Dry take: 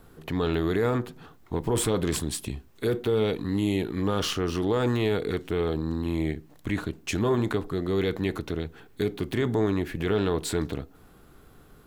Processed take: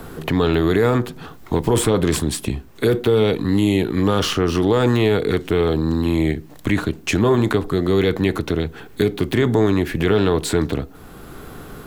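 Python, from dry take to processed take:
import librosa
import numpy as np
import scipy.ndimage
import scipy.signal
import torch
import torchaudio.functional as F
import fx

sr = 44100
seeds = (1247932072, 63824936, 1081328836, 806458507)

y = fx.band_squash(x, sr, depth_pct=40)
y = y * 10.0 ** (8.5 / 20.0)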